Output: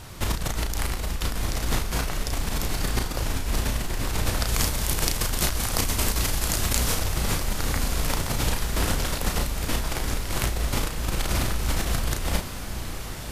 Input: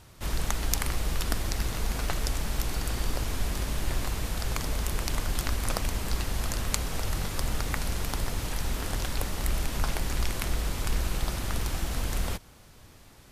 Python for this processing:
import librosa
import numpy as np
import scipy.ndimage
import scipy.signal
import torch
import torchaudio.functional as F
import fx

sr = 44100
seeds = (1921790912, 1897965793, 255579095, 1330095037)

y = fx.over_compress(x, sr, threshold_db=-33.0, ratio=-1.0)
y = fx.high_shelf(y, sr, hz=3800.0, db=7.5, at=(4.45, 6.99))
y = fx.doubler(y, sr, ms=34.0, db=-5.0)
y = fx.echo_diffused(y, sr, ms=1180, feedback_pct=66, wet_db=-10)
y = y * 10.0 ** (6.0 / 20.0)